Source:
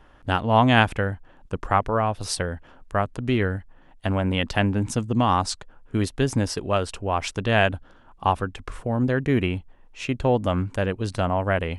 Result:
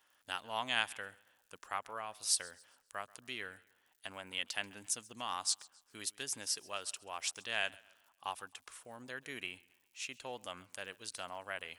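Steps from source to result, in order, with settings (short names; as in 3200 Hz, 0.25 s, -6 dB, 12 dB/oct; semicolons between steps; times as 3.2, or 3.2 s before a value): crackle 110/s -54 dBFS; differentiator; warbling echo 0.135 s, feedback 39%, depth 68 cents, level -23 dB; gain -1.5 dB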